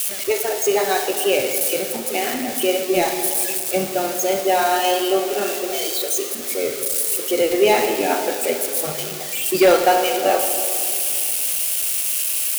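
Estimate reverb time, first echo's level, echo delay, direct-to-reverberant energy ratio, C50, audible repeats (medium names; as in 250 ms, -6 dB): 2.8 s, no echo, no echo, 5.5 dB, 6.5 dB, no echo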